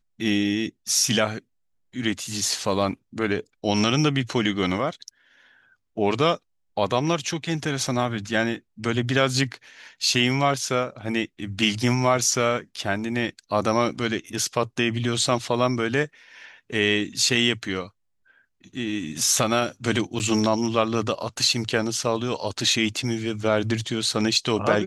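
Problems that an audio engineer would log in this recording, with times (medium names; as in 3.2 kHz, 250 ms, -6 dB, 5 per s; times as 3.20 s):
20.19–20.20 s: dropout 8.6 ms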